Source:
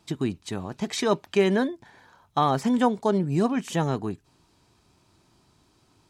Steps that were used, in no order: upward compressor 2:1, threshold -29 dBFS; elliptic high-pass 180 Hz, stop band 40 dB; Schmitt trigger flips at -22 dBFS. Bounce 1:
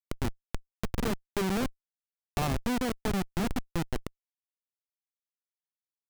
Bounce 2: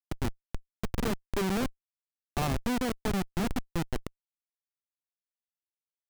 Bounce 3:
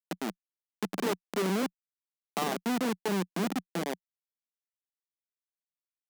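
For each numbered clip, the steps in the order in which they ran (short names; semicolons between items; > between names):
elliptic high-pass > Schmitt trigger > upward compressor; upward compressor > elliptic high-pass > Schmitt trigger; Schmitt trigger > upward compressor > elliptic high-pass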